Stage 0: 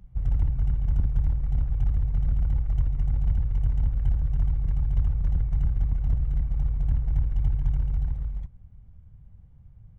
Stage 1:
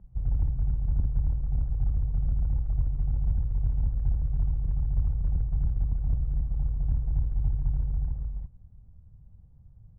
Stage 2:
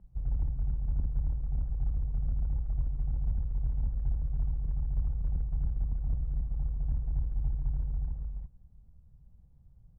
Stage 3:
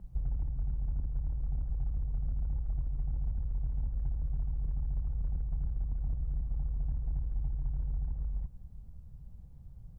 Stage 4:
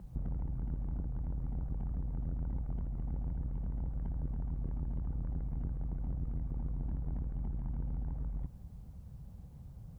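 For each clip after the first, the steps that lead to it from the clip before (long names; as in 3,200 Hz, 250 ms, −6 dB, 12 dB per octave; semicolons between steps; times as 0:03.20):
low-pass filter 1,000 Hz 12 dB per octave; level −2.5 dB
parametric band 100 Hz −7 dB 0.55 octaves; level −3.5 dB
downward compressor 6 to 1, threshold −38 dBFS, peak gain reduction 13.5 dB; level +8 dB
high-pass filter 140 Hz 6 dB per octave; saturating transformer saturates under 130 Hz; level +8 dB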